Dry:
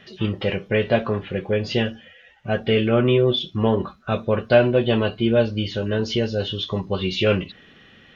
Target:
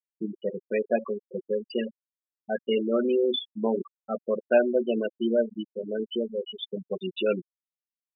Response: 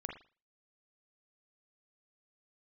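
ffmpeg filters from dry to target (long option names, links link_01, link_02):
-af "highpass=frequency=200:width=0.5412,highpass=frequency=200:width=1.3066,afftfilt=real='re*gte(hypot(re,im),0.224)':imag='im*gte(hypot(re,im),0.224)':win_size=1024:overlap=0.75,volume=-5dB"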